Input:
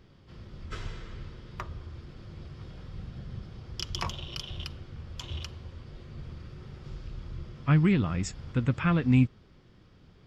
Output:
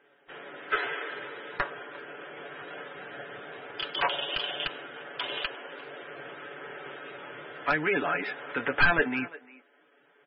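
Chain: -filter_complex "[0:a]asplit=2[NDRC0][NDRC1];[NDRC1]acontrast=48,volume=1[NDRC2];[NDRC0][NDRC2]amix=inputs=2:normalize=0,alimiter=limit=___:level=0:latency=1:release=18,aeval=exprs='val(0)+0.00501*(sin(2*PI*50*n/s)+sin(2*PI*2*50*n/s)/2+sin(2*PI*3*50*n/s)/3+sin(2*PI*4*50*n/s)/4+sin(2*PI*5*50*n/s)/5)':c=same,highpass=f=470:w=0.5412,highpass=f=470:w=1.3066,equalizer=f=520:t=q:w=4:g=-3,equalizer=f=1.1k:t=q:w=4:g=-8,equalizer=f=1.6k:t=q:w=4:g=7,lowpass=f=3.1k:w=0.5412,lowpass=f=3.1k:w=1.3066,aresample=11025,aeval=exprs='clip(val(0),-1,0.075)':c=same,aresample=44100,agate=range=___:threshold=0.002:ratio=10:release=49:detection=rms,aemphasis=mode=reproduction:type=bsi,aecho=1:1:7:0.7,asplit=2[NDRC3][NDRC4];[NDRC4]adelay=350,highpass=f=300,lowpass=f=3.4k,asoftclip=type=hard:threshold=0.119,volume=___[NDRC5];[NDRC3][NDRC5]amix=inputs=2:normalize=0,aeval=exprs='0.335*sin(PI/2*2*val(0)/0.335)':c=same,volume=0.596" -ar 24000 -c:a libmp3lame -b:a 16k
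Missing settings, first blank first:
0.188, 0.251, 0.1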